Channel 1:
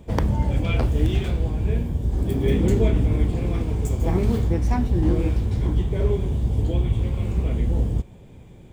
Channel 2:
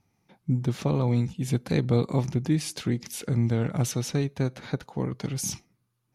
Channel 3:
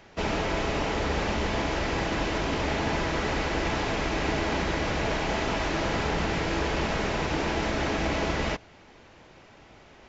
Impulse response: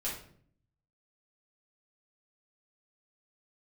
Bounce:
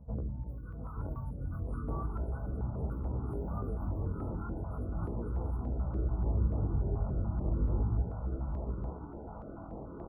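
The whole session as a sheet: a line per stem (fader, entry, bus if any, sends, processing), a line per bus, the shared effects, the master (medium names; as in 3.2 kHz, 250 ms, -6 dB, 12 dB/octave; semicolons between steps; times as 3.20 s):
-3.0 dB, 0.00 s, send -24 dB, echo send -6 dB, compression, threshold -22 dBFS, peak gain reduction 9 dB; Gaussian low-pass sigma 8.7 samples; auto duck -15 dB, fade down 0.70 s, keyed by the second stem
-13.0 dB, 0.00 s, send -4.5 dB, no echo send, spectrum inverted on a logarithmic axis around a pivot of 740 Hz
-6.0 dB, 1.70 s, no send, echo send -4 dB, compression, threshold -30 dBFS, peak gain reduction 7 dB; low-pass 1 kHz 12 dB/octave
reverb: on, RT60 0.55 s, pre-delay 4 ms
echo: delay 878 ms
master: FFT band-reject 1.5–9.1 kHz; chorus 0.35 Hz, delay 15 ms, depth 7.5 ms; step-sequenced notch 6.9 Hz 350–1900 Hz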